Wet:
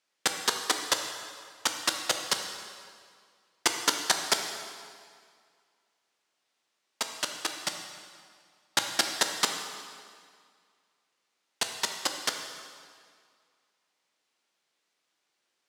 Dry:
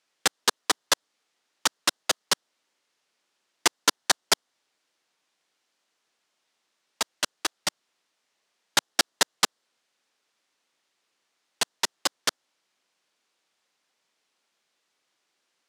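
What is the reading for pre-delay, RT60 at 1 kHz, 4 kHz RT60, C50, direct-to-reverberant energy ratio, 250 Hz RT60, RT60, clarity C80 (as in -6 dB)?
10 ms, 2.1 s, 1.8 s, 5.5 dB, 4.0 dB, 2.0 s, 2.0 s, 6.5 dB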